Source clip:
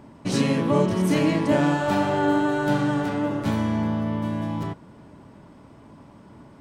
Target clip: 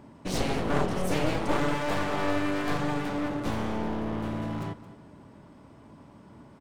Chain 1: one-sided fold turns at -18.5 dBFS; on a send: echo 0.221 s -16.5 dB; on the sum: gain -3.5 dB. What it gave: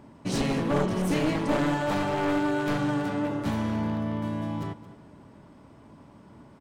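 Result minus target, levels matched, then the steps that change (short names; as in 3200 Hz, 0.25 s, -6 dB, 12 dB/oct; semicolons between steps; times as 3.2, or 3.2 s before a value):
one-sided fold: distortion -11 dB
change: one-sided fold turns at -26 dBFS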